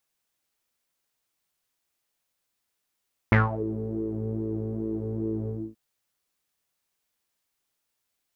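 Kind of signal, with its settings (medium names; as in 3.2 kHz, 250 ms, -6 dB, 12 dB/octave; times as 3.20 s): synth patch with pulse-width modulation A2, filter lowpass, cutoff 280 Hz, Q 7.3, filter envelope 3 oct, filter decay 0.31 s, filter sustain 15%, attack 1.2 ms, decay 0.17 s, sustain -15 dB, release 0.26 s, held 2.17 s, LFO 2.4 Hz, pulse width 25%, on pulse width 11%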